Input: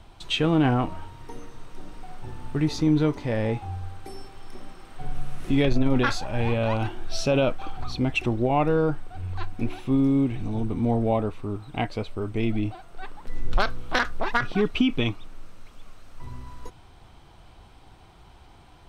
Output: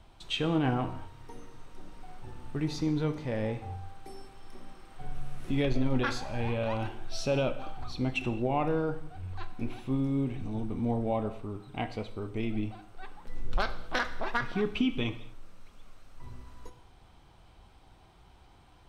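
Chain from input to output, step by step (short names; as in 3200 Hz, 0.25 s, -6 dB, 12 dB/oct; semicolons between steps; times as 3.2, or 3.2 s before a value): non-linear reverb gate 0.26 s falling, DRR 9 dB; gain -7 dB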